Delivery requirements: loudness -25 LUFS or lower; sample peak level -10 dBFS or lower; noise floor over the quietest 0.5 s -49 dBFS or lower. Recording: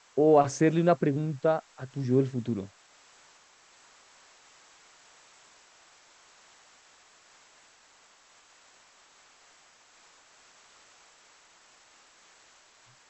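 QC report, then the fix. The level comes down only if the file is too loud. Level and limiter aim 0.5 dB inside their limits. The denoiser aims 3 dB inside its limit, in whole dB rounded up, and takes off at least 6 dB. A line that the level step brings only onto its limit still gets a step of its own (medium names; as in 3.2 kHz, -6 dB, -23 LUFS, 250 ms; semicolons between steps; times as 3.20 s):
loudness -26.5 LUFS: pass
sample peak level -9.0 dBFS: fail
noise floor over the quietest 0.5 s -60 dBFS: pass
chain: peak limiter -10.5 dBFS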